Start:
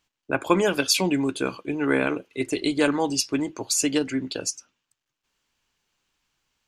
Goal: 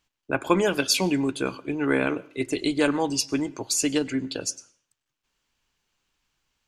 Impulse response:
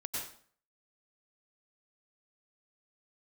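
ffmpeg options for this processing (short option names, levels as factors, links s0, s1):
-filter_complex "[0:a]lowshelf=f=77:g=5.5,asplit=2[s0][s1];[1:a]atrim=start_sample=2205,lowpass=8900[s2];[s1][s2]afir=irnorm=-1:irlink=0,volume=0.0794[s3];[s0][s3]amix=inputs=2:normalize=0,volume=0.841"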